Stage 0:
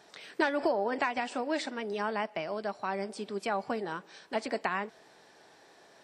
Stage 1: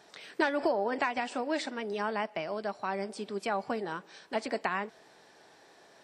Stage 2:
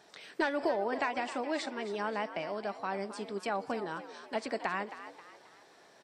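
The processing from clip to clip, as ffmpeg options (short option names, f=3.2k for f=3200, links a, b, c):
-af anull
-filter_complex "[0:a]asoftclip=type=tanh:threshold=-13.5dB,asplit=2[a][b];[b]asplit=4[c][d][e][f];[c]adelay=267,afreqshift=73,volume=-12.5dB[g];[d]adelay=534,afreqshift=146,volume=-20.2dB[h];[e]adelay=801,afreqshift=219,volume=-28dB[i];[f]adelay=1068,afreqshift=292,volume=-35.7dB[j];[g][h][i][j]amix=inputs=4:normalize=0[k];[a][k]amix=inputs=2:normalize=0,volume=-2dB"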